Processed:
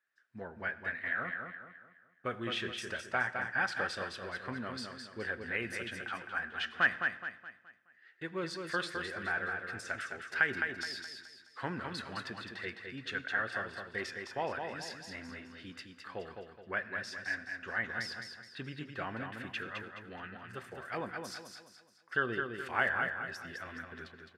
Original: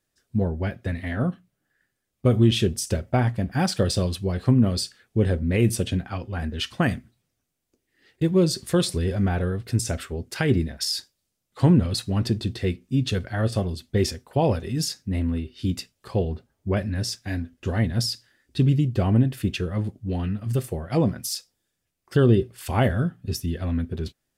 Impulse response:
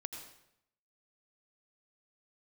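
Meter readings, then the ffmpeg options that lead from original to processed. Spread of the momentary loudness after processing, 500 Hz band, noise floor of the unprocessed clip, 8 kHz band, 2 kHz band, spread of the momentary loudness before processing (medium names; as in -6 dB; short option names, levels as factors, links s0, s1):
14 LU, -15.0 dB, -79 dBFS, -19.0 dB, +3.5 dB, 10 LU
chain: -filter_complex "[0:a]bandpass=f=1600:t=q:w=3.5:csg=0,aecho=1:1:211|422|633|844|1055:0.531|0.207|0.0807|0.0315|0.0123,asplit=2[s0][s1];[1:a]atrim=start_sample=2205[s2];[s1][s2]afir=irnorm=-1:irlink=0,volume=0.355[s3];[s0][s3]amix=inputs=2:normalize=0,volume=1.33"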